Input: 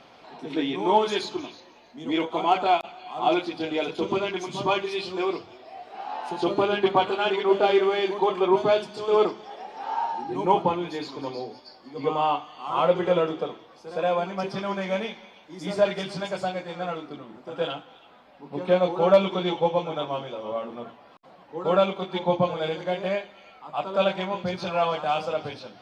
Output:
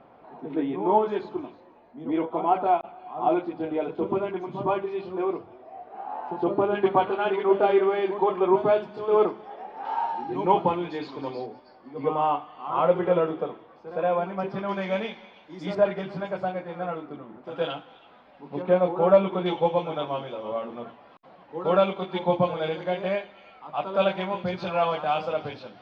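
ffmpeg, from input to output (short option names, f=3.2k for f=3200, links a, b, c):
-af "asetnsamples=n=441:p=0,asendcmd='6.75 lowpass f 1800;9.85 lowpass f 3100;11.46 lowpass f 1900;14.69 lowpass f 3700;15.75 lowpass f 1800;17.44 lowpass f 3700;18.62 lowpass f 1800;19.46 lowpass f 3400',lowpass=1.2k"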